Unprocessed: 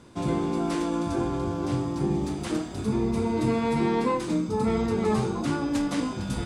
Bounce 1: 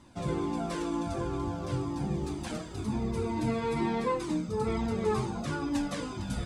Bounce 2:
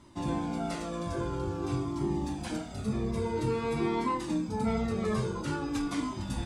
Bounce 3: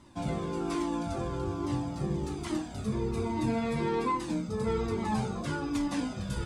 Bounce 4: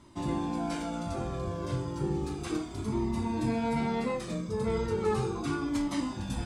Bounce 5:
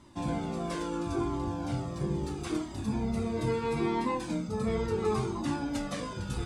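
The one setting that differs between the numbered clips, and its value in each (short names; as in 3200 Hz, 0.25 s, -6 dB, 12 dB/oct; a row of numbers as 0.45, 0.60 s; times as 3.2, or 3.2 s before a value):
cascading flanger, rate: 2.1, 0.49, 1.2, 0.34, 0.75 Hz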